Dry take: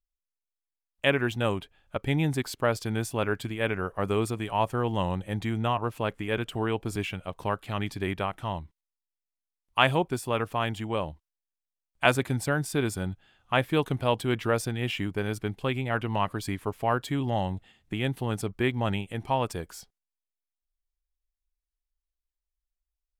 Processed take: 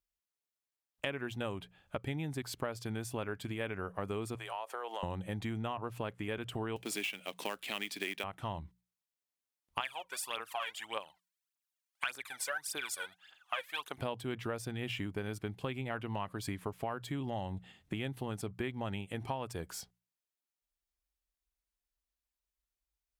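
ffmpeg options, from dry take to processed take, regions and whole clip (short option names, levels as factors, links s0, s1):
-filter_complex "[0:a]asettb=1/sr,asplit=3[s0][s1][s2];[s0]atrim=end=4.354[s3];[s1]atrim=start=4.35:end=5.03,asetpts=PTS-STARTPTS,afade=t=in:d=0.004:c=qsin,afade=t=out:st=0.676:d=0.004:c=qsin,highpass=f=500:w=0.5412,highpass=f=500:w=1.3066,acompressor=threshold=0.0158:ratio=3:attack=3.2:release=140:knee=1:detection=peak[s4];[s2]atrim=start=5.026[s5];[s3][s4]acrossfade=d=0.004:c1=hsin:c2=qsin[s6];[s6][s5]acrossfade=d=0.004:c1=qsin:c2=hsin,asettb=1/sr,asplit=3[s7][s8][s9];[s7]atrim=end=6.764[s10];[s8]atrim=start=6.76:end=8.24,asetpts=PTS-STARTPTS,afade=t=in:d=0.004:c=qsin,afade=t=out:st=1.476:d=0.004:c=qsin,highpass=f=220:w=0.5412,highpass=f=220:w=1.3066,highshelf=f=1700:t=q:w=1.5:g=9,acrusher=bits=3:mode=log:mix=0:aa=0.000001[s11];[s9]atrim=start=8.236[s12];[s10][s11]acrossfade=d=0.004:c1=hsin:c2=qsin[s13];[s13][s12]acrossfade=d=0.004:c1=qsin:c2=hsin,asettb=1/sr,asplit=3[s14][s15][s16];[s14]atrim=end=9.804[s17];[s15]atrim=start=9.8:end=13.98,asetpts=PTS-STARTPTS,afade=t=in:d=0.004:c=qsin,afade=t=out:st=4.176:d=0.004:c=qsin,highpass=1100,aphaser=in_gain=1:out_gain=1:delay=2.2:decay=0.75:speed=1.7:type=triangular[s18];[s16]atrim=start=13.976[s19];[s17][s18]acrossfade=d=0.004:c1=hsin:c2=qsin[s20];[s20][s19]acrossfade=d=0.004:c1=qsin:c2=hsin,highpass=50,bandreject=f=60:t=h:w=6,bandreject=f=120:t=h:w=6,bandreject=f=180:t=h:w=6,acompressor=threshold=0.0158:ratio=6,volume=1.12"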